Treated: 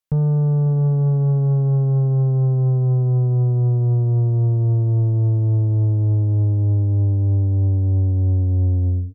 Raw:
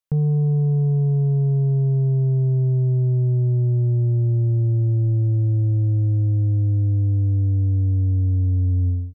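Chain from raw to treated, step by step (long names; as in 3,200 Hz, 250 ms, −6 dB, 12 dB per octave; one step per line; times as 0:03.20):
single-tap delay 548 ms −20 dB
harmonic generator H 4 −21 dB, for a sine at −15 dBFS
level +1.5 dB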